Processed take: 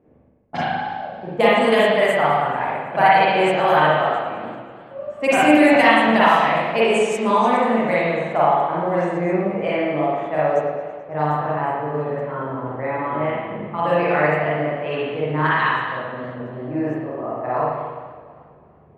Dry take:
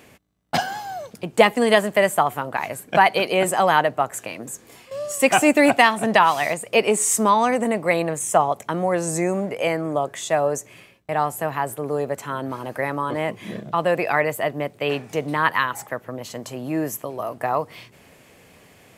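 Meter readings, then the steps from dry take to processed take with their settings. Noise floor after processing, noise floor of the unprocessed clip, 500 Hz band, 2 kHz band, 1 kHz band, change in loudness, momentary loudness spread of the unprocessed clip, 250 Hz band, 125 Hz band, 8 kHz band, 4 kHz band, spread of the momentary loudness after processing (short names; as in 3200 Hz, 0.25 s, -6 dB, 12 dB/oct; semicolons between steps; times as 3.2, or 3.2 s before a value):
-48 dBFS, -52 dBFS, +2.5 dB, +2.0 dB, +3.0 dB, +2.0 dB, 15 LU, +3.0 dB, +3.5 dB, -14.5 dB, 0.0 dB, 14 LU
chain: low-pass opened by the level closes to 530 Hz, open at -13 dBFS; spring tank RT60 1.4 s, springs 40/53 ms, chirp 20 ms, DRR -8.5 dB; warbling echo 0.109 s, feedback 78%, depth 177 cents, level -19.5 dB; gain -7 dB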